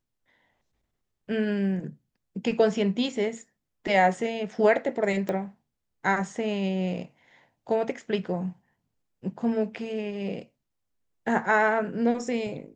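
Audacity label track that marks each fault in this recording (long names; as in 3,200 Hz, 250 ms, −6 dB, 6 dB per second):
5.290000	5.290000	click −18 dBFS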